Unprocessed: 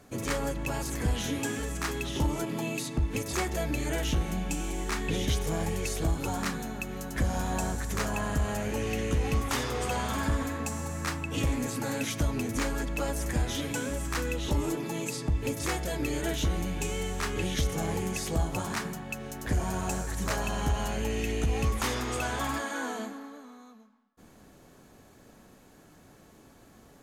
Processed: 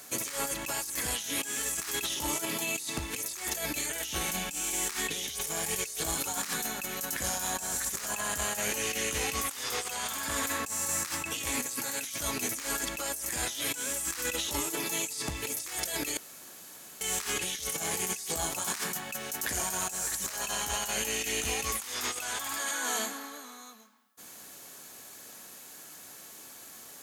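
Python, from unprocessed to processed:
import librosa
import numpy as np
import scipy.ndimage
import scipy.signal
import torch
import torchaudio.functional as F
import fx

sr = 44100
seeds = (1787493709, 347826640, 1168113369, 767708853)

y = fx.edit(x, sr, fx.room_tone_fill(start_s=16.17, length_s=0.84), tone=tone)
y = fx.tilt_eq(y, sr, slope=4.5)
y = fx.over_compress(y, sr, threshold_db=-34.0, ratio=-1.0)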